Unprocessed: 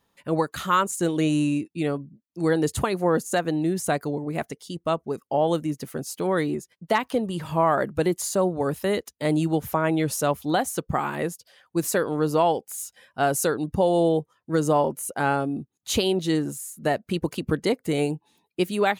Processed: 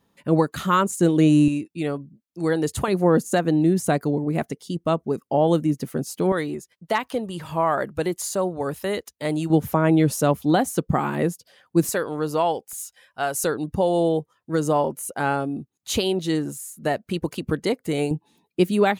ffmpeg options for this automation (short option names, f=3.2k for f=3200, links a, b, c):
-af "asetnsamples=n=441:p=0,asendcmd='1.48 equalizer g -0.5;2.88 equalizer g 7;6.32 equalizer g -3;9.5 equalizer g 8;11.89 equalizer g -3.5;12.73 equalizer g -10.5;13.44 equalizer g 0;18.11 equalizer g 7',equalizer=f=200:t=o:w=2.4:g=8"